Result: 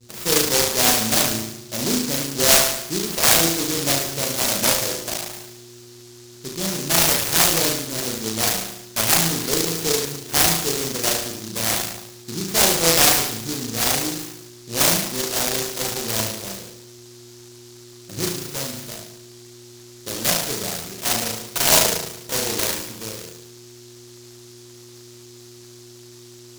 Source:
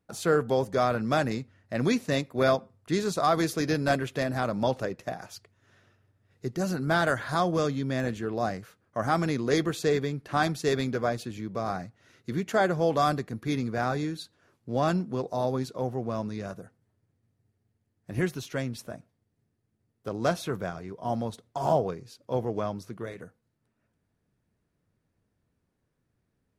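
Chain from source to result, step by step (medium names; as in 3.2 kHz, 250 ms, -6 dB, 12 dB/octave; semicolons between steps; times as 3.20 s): mains buzz 120 Hz, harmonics 4, -43 dBFS -7 dB/octave; bass shelf 340 Hz -6 dB; de-hum 68.43 Hz, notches 38; on a send: flutter echo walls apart 6.2 m, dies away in 0.81 s; on the sum: expander -44 dBFS; peaking EQ 1 kHz +13 dB 0.47 oct; delay time shaken by noise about 5.3 kHz, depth 0.32 ms; trim +3 dB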